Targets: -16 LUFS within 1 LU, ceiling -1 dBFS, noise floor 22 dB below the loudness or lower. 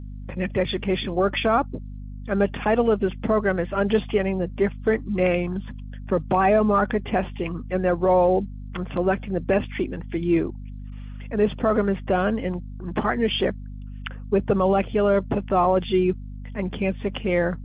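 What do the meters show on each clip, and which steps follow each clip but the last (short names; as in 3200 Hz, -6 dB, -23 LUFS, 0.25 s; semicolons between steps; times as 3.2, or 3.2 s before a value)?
hum 50 Hz; harmonics up to 250 Hz; hum level -33 dBFS; loudness -23.5 LUFS; peak -8.5 dBFS; loudness target -16.0 LUFS
-> notches 50/100/150/200/250 Hz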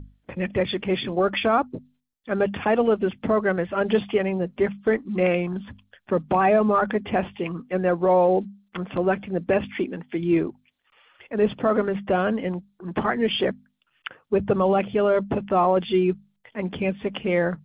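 hum none; loudness -23.5 LUFS; peak -9.0 dBFS; loudness target -16.0 LUFS
-> gain +7.5 dB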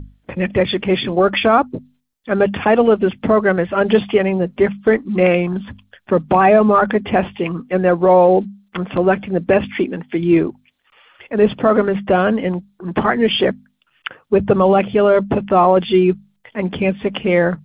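loudness -16.0 LUFS; peak -1.5 dBFS; noise floor -63 dBFS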